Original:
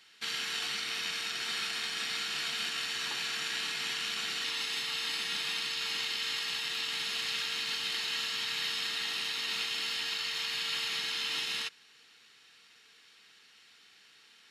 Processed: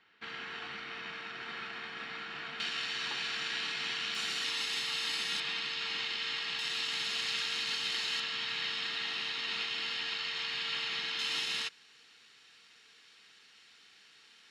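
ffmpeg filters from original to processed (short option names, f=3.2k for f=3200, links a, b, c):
-af "asetnsamples=n=441:p=0,asendcmd='2.6 lowpass f 4600;4.15 lowpass f 10000;5.4 lowpass f 4100;6.59 lowpass f 8100;8.2 lowpass f 4100;11.19 lowpass f 9300',lowpass=1.8k"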